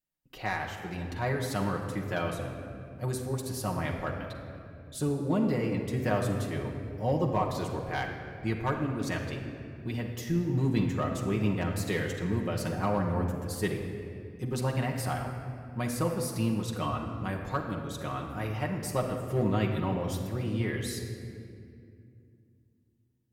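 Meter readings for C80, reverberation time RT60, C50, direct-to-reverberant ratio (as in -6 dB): 6.0 dB, 2.5 s, 5.0 dB, -1.0 dB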